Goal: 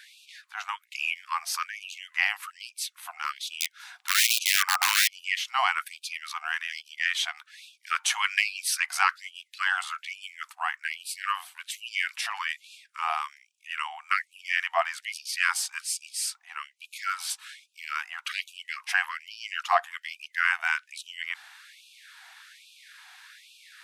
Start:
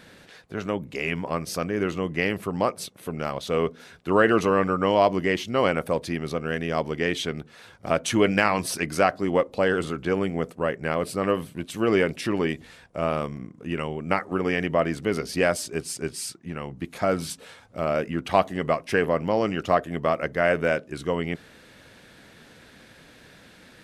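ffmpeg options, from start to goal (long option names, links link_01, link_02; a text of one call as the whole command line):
ffmpeg -i in.wav -filter_complex "[0:a]asettb=1/sr,asplit=3[link_01][link_02][link_03];[link_01]atrim=end=3.604[link_04];[link_02]atrim=start=3.6:end=5.08,asetpts=PTS-STARTPTS,afade=type=in:duration=0.004:curve=qsin,afade=type=out:start_time=1.476:duration=0.004:curve=qsin,aeval=exprs='(mod(6.68*val(0)+1,2)-1)/6.68':channel_layout=same[link_05];[link_03]atrim=start=5.076[link_06];[link_04][link_05]acrossfade=duration=0.004:curve1=hsin:curve2=qsin[link_07];[link_07][link_06]acrossfade=duration=0.004:curve1=qsin:curve2=hsin,afftfilt=real='re*gte(b*sr/1024,680*pow(2400/680,0.5+0.5*sin(2*PI*1.2*pts/sr)))':imag='im*gte(b*sr/1024,680*pow(2400/680,0.5+0.5*sin(2*PI*1.2*pts/sr)))':win_size=1024:overlap=0.75,volume=3dB" out.wav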